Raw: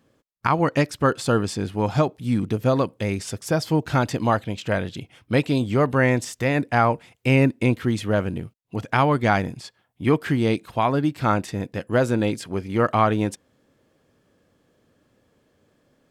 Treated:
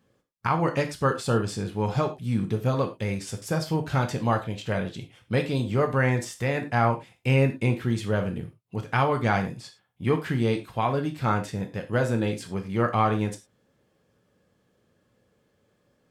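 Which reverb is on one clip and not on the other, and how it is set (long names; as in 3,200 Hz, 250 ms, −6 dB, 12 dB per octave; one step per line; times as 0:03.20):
reverb whose tail is shaped and stops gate 130 ms falling, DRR 4 dB
level −5.5 dB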